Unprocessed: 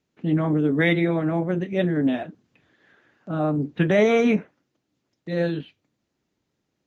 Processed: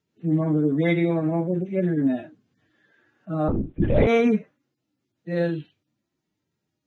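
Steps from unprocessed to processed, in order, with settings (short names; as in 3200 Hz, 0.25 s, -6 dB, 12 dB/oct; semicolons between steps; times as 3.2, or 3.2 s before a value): median-filter separation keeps harmonic; 3.48–4.07 LPC vocoder at 8 kHz whisper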